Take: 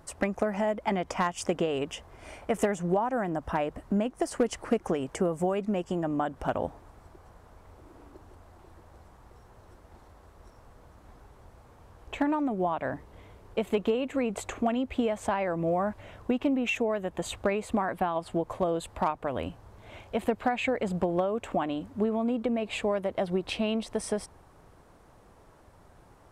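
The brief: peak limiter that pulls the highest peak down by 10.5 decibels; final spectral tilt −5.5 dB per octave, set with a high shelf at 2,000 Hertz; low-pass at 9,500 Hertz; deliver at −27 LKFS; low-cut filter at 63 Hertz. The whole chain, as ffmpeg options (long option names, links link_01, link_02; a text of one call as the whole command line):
ffmpeg -i in.wav -af "highpass=63,lowpass=9500,highshelf=frequency=2000:gain=-6,volume=8.5dB,alimiter=limit=-17dB:level=0:latency=1" out.wav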